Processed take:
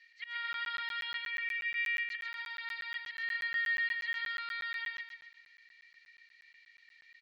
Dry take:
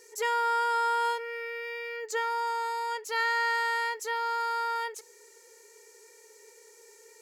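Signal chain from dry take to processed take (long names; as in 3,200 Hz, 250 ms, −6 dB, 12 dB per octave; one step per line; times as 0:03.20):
elliptic band-pass filter 1,900–4,200 Hz, stop band 80 dB
spectral tilt −4.5 dB per octave
brickwall limiter −38.5 dBFS, peak gain reduction 9 dB
volume swells 136 ms
repeating echo 132 ms, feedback 42%, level −4 dB
regular buffer underruns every 0.12 s, samples 512, zero, from 0:00.53
level +9 dB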